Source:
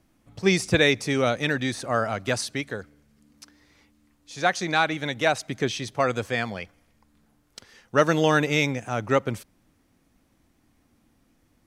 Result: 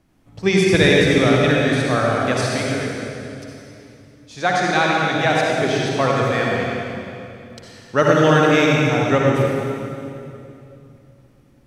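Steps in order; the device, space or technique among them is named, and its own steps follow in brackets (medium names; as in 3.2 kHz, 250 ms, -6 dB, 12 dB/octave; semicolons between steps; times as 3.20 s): swimming-pool hall (reverberation RT60 2.8 s, pre-delay 50 ms, DRR -3 dB; treble shelf 5.1 kHz -6 dB); trim +2.5 dB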